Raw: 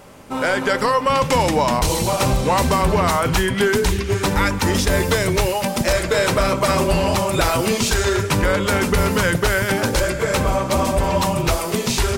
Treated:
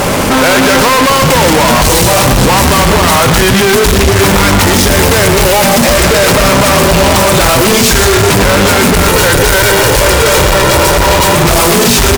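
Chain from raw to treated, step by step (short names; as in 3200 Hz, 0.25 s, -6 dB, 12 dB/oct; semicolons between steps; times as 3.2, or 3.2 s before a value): 9.08–11.35 minimum comb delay 2.1 ms; fuzz box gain 46 dB, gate -52 dBFS; echo 0.122 s -9.5 dB; gain +6 dB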